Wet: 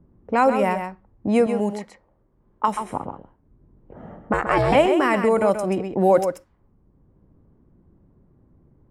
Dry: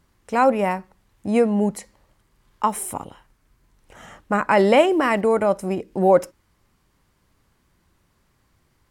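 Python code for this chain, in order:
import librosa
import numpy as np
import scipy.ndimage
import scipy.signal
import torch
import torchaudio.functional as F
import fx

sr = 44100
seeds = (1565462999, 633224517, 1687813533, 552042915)

y = fx.env_lowpass(x, sr, base_hz=380.0, full_db=-16.0)
y = fx.low_shelf(y, sr, hz=320.0, db=-10.0, at=(1.46, 2.68))
y = fx.ring_mod(y, sr, carrier_hz=260.0, at=(4.33, 4.75))
y = fx.high_shelf(y, sr, hz=9500.0, db=9.5, at=(5.48, 5.91))
y = y + 10.0 ** (-8.5 / 20.0) * np.pad(y, (int(131 * sr / 1000.0), 0))[:len(y)]
y = fx.band_squash(y, sr, depth_pct=40)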